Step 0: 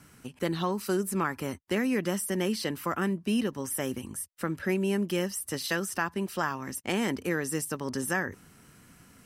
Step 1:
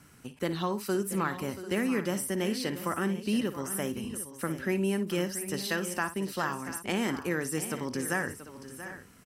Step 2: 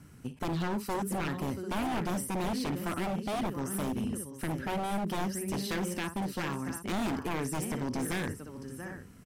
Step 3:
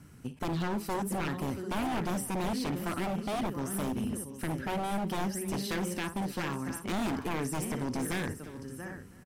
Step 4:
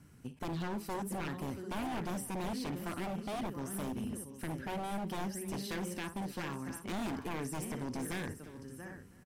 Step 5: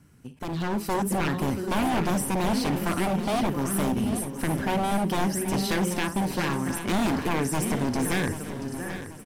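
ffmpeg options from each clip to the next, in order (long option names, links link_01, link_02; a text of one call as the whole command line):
ffmpeg -i in.wav -af "aecho=1:1:57|682|744:0.224|0.224|0.178,volume=-1.5dB" out.wav
ffmpeg -i in.wav -af "lowshelf=frequency=380:gain=11.5,aeval=exprs='0.075*(abs(mod(val(0)/0.075+3,4)-2)-1)':channel_layout=same,volume=-4dB" out.wav
ffmpeg -i in.wav -af "aecho=1:1:319:0.106" out.wav
ffmpeg -i in.wav -af "bandreject=frequency=1300:width=27,volume=-5.5dB" out.wav
ffmpeg -i in.wav -af "dynaudnorm=framelen=250:gausssize=5:maxgain=10.5dB,aecho=1:1:785|1570|2355|3140:0.251|0.105|0.0443|0.0186,volume=2dB" out.wav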